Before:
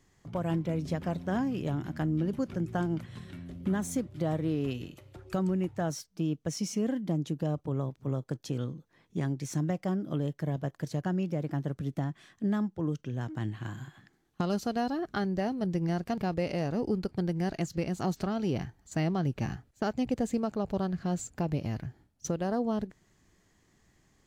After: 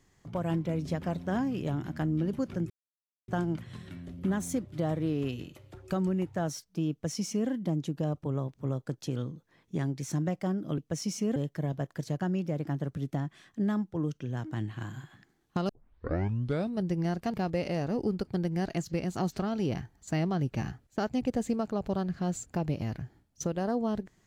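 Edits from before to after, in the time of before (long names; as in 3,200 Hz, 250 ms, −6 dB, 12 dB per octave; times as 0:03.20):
0:02.70: splice in silence 0.58 s
0:06.33–0:06.91: duplicate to 0:10.20
0:14.53: tape start 1.11 s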